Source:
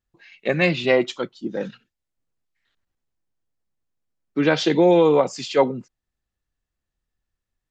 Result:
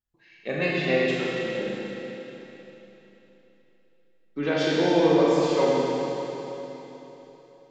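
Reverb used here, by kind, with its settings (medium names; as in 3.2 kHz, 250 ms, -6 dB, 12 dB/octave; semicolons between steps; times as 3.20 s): Schroeder reverb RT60 3.6 s, combs from 27 ms, DRR -6 dB; trim -10 dB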